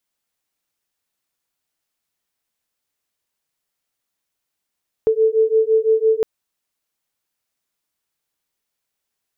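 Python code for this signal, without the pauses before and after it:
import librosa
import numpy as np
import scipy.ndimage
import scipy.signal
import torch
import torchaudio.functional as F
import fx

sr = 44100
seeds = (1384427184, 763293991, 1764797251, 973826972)

y = fx.two_tone_beats(sr, length_s=1.16, hz=439.0, beat_hz=5.9, level_db=-16.0)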